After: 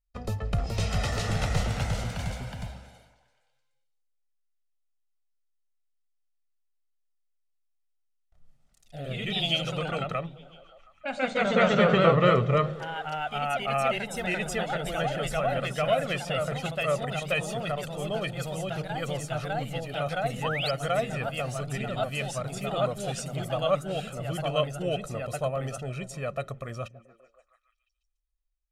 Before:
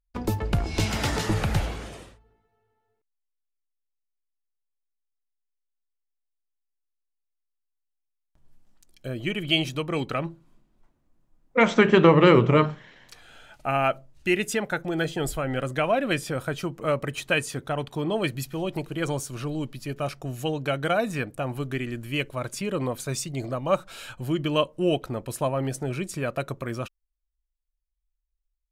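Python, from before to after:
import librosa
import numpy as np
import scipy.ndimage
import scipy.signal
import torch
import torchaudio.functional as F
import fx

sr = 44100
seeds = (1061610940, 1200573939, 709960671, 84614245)

y = scipy.signal.sosfilt(scipy.signal.butter(2, 10000.0, 'lowpass', fs=sr, output='sos'), x)
y = y + 0.71 * np.pad(y, (int(1.6 * sr / 1000.0), 0))[:len(y)]
y = fx.echo_stepped(y, sr, ms=144, hz=150.0, octaves=0.7, feedback_pct=70, wet_db=-12.0)
y = fx.echo_pitch(y, sr, ms=440, semitones=1, count=3, db_per_echo=-3.0)
y = fx.spec_paint(y, sr, seeds[0], shape='rise', start_s=20.42, length_s=0.29, low_hz=790.0, high_hz=5300.0, level_db=-26.0)
y = y * 10.0 ** (-6.5 / 20.0)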